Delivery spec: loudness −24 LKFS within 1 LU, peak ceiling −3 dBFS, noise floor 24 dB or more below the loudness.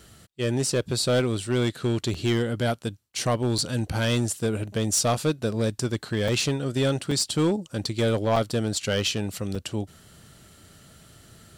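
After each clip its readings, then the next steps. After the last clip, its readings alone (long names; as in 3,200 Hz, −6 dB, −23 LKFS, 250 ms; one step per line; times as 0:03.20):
share of clipped samples 1.2%; peaks flattened at −16.5 dBFS; number of dropouts 6; longest dropout 4.5 ms; integrated loudness −26.0 LKFS; sample peak −16.5 dBFS; target loudness −24.0 LKFS
→ clipped peaks rebuilt −16.5 dBFS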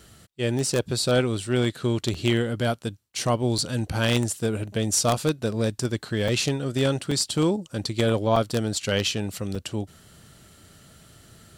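share of clipped samples 0.0%; number of dropouts 6; longest dropout 4.5 ms
→ repair the gap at 0:02.14/0:03.58/0:06.28/0:07.11/0:08.36/0:09.55, 4.5 ms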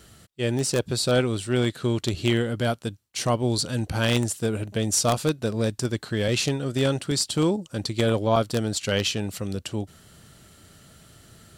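number of dropouts 0; integrated loudness −25.0 LKFS; sample peak −7.5 dBFS; target loudness −24.0 LKFS
→ level +1 dB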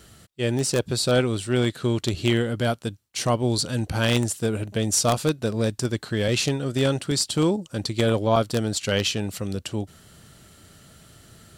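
integrated loudness −24.0 LKFS; sample peak −6.5 dBFS; background noise floor −53 dBFS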